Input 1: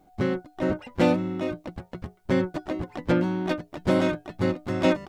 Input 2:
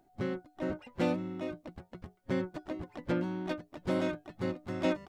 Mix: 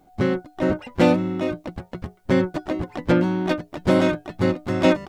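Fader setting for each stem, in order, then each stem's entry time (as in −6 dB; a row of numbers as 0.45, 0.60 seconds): +2.5, −1.5 decibels; 0.00, 0.00 seconds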